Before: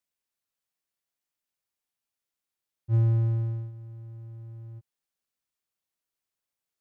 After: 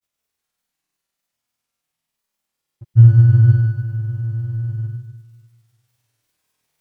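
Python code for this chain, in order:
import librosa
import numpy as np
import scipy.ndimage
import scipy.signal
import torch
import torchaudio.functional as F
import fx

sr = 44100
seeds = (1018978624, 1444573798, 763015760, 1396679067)

y = fx.peak_eq(x, sr, hz=150.0, db=3.0, octaves=1.3)
y = fx.room_flutter(y, sr, wall_m=4.4, rt60_s=1.4)
y = fx.granulator(y, sr, seeds[0], grain_ms=100.0, per_s=20.0, spray_ms=100.0, spread_st=0)
y = fx.rider(y, sr, range_db=10, speed_s=0.5)
y = y * librosa.db_to_amplitude(8.0)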